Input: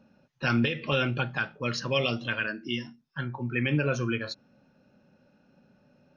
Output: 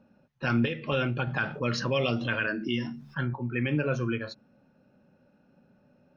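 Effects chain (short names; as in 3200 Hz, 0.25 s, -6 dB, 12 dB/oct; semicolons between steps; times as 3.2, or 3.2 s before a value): high shelf 2900 Hz -9.5 dB; de-hum 71.75 Hz, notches 3; 1.27–3.34 fast leveller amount 50%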